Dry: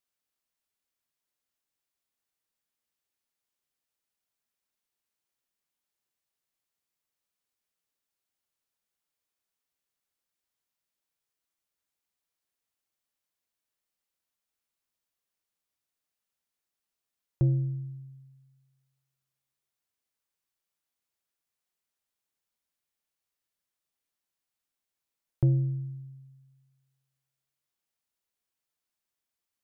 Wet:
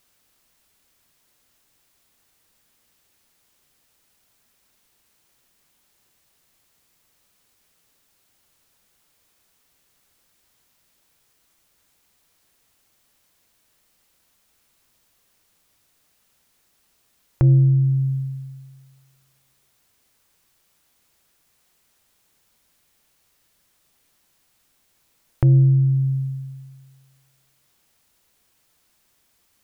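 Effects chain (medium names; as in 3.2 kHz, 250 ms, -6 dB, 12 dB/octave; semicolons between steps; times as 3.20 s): bass shelf 220 Hz +6 dB; compression 2.5:1, threshold -40 dBFS, peak gain reduction 16 dB; loudness maximiser +29 dB; trim -7 dB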